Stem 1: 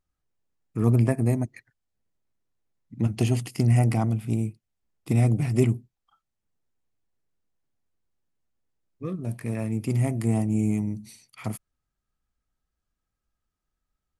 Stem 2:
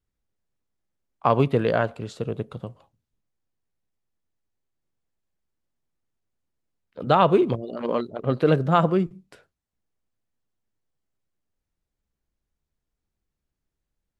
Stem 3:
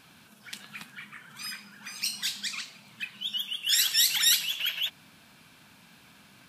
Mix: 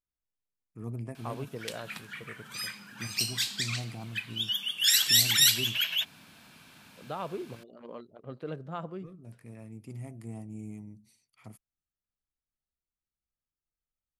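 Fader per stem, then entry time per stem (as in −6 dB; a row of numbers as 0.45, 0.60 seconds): −17.5, −19.0, +1.0 decibels; 0.00, 0.00, 1.15 seconds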